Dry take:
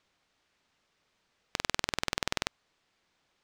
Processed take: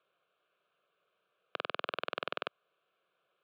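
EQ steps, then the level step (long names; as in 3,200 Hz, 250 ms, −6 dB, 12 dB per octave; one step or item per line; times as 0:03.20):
Bessel high-pass filter 260 Hz, order 4
high-frequency loss of the air 480 metres
phaser with its sweep stopped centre 1,300 Hz, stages 8
+4.5 dB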